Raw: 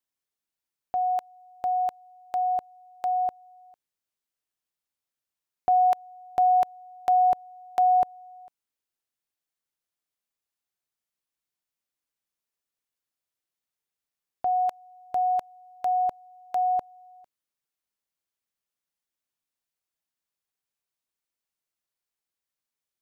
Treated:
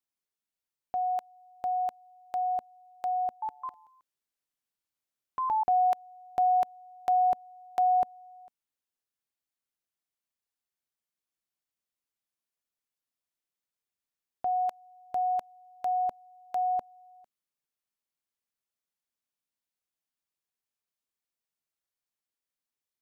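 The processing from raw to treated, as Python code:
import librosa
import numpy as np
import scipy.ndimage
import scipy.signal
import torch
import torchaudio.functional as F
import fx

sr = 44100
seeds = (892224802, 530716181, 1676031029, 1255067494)

y = fx.peak_eq(x, sr, hz=230.0, db=3.0, octaves=0.39)
y = fx.echo_pitch(y, sr, ms=212, semitones=3, count=2, db_per_echo=-3.0, at=(3.21, 5.84))
y = F.gain(torch.from_numpy(y), -4.0).numpy()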